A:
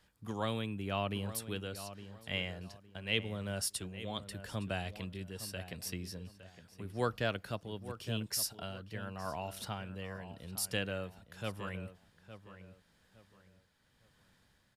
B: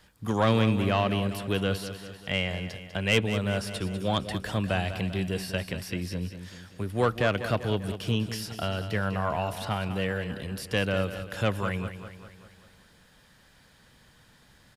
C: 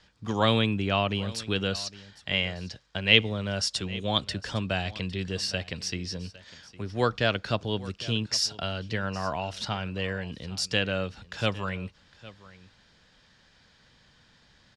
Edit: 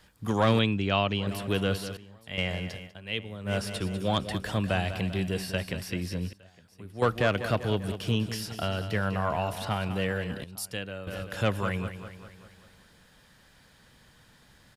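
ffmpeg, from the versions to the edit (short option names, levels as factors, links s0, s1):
-filter_complex "[0:a]asplit=4[s0][s1][s2][s3];[1:a]asplit=6[s4][s5][s6][s7][s8][s9];[s4]atrim=end=0.592[s10];[2:a]atrim=start=0.588:end=1.272[s11];[s5]atrim=start=1.268:end=1.972[s12];[s0]atrim=start=1.968:end=2.382[s13];[s6]atrim=start=2.378:end=2.95[s14];[s1]atrim=start=2.85:end=3.53[s15];[s7]atrim=start=3.43:end=6.332[s16];[s2]atrim=start=6.328:end=7.022[s17];[s8]atrim=start=7.018:end=10.442[s18];[s3]atrim=start=10.438:end=11.072[s19];[s9]atrim=start=11.068[s20];[s10][s11]acrossfade=d=0.004:c1=hsin:c2=hsin[s21];[s21][s12]acrossfade=d=0.004:c1=hsin:c2=hsin[s22];[s22][s13]acrossfade=d=0.004:c1=hsin:c2=hsin[s23];[s23][s14]acrossfade=d=0.004:c1=hsin:c2=hsin[s24];[s24][s15]acrossfade=d=0.1:c1=tri:c2=tri[s25];[s25][s16]acrossfade=d=0.1:c1=tri:c2=tri[s26];[s26][s17]acrossfade=d=0.004:c1=hsin:c2=hsin[s27];[s27][s18]acrossfade=d=0.004:c1=hsin:c2=hsin[s28];[s28][s19]acrossfade=d=0.004:c1=hsin:c2=hsin[s29];[s29][s20]acrossfade=d=0.004:c1=hsin:c2=hsin"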